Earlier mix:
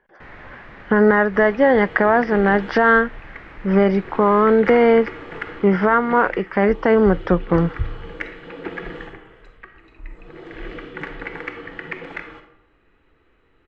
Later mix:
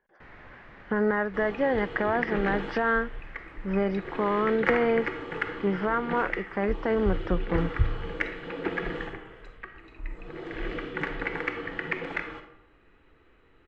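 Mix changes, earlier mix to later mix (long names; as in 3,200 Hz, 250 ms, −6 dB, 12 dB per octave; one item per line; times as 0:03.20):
speech −11.0 dB
first sound −8.0 dB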